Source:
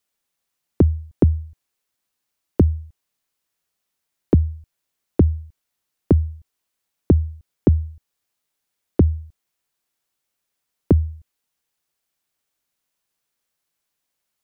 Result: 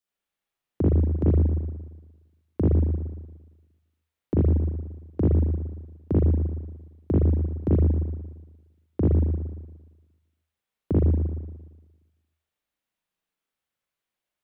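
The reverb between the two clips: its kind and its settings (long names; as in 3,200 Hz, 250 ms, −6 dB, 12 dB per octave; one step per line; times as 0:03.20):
spring reverb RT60 1.2 s, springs 38/58 ms, chirp 30 ms, DRR −7.5 dB
level −12 dB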